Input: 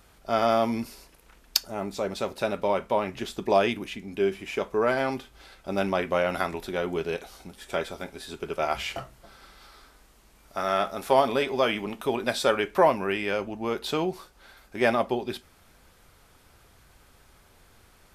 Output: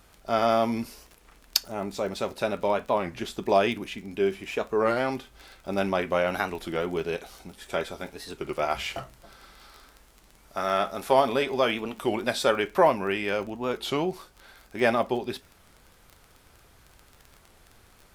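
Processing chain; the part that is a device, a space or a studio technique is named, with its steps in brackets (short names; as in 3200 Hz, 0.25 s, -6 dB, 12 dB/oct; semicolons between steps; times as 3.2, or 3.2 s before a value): warped LP (record warp 33 1/3 rpm, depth 160 cents; crackle 25/s -35 dBFS; pink noise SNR 41 dB)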